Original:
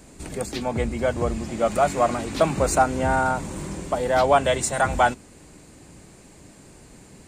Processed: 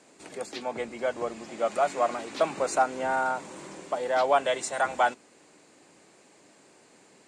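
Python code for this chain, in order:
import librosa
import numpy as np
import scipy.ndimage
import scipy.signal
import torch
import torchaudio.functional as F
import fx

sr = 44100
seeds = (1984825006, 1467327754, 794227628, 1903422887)

y = fx.bandpass_edges(x, sr, low_hz=150.0, high_hz=7600.0)
y = fx.bass_treble(y, sr, bass_db=-14, treble_db=-1)
y = y * 10.0 ** (-4.5 / 20.0)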